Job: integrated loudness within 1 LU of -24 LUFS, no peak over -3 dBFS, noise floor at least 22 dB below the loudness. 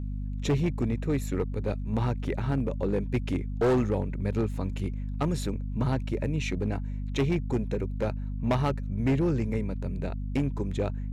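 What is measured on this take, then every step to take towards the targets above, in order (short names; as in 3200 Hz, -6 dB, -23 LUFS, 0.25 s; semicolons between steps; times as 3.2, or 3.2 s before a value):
clipped 2.1%; flat tops at -20.0 dBFS; hum 50 Hz; harmonics up to 250 Hz; hum level -30 dBFS; loudness -29.5 LUFS; peak -20.0 dBFS; loudness target -24.0 LUFS
-> clip repair -20 dBFS; de-hum 50 Hz, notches 5; gain +5.5 dB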